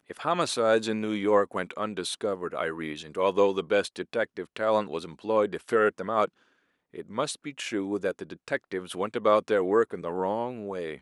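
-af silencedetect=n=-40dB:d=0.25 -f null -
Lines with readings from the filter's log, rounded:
silence_start: 6.26
silence_end: 6.94 | silence_duration: 0.68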